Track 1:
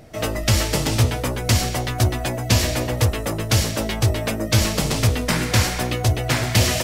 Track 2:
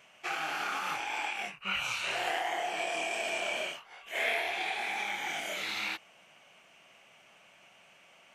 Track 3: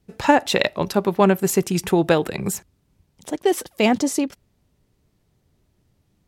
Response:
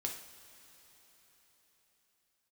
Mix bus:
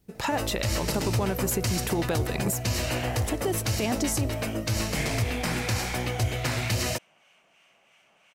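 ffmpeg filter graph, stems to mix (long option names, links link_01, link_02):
-filter_complex "[0:a]bandreject=frequency=3400:width=9,adelay=150,volume=-9dB,asplit=2[link_01][link_02];[link_02]volume=-8dB[link_03];[1:a]acrossover=split=1100[link_04][link_05];[link_04]aeval=exprs='val(0)*(1-0.5/2+0.5/2*cos(2*PI*3*n/s))':channel_layout=same[link_06];[link_05]aeval=exprs='val(0)*(1-0.5/2-0.5/2*cos(2*PI*3*n/s))':channel_layout=same[link_07];[link_06][link_07]amix=inputs=2:normalize=0,adelay=800,volume=-0.5dB[link_08];[2:a]highshelf=frequency=9800:gain=11.5,acompressor=threshold=-22dB:ratio=6,volume=-1dB,asplit=2[link_09][link_10];[link_10]apad=whole_len=403082[link_11];[link_08][link_11]sidechaincompress=threshold=-49dB:ratio=8:attack=7.7:release=156[link_12];[3:a]atrim=start_sample=2205[link_13];[link_03][link_13]afir=irnorm=-1:irlink=0[link_14];[link_01][link_12][link_09][link_14]amix=inputs=4:normalize=0,alimiter=limit=-17dB:level=0:latency=1:release=55"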